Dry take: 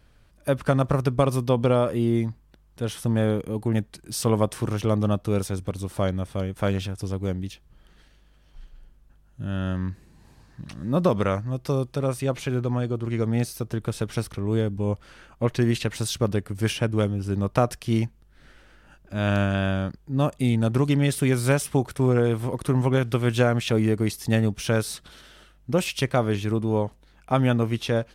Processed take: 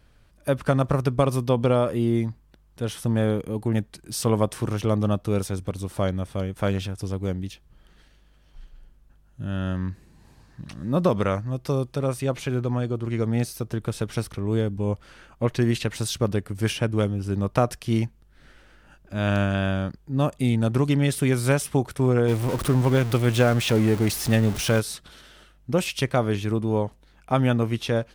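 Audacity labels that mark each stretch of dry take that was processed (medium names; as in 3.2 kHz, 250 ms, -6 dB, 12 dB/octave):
22.280000	24.800000	jump at every zero crossing of -27 dBFS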